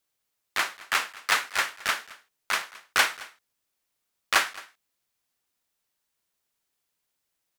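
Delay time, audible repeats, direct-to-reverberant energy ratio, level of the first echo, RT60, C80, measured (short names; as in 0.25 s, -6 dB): 0.218 s, 1, none, -20.5 dB, none, none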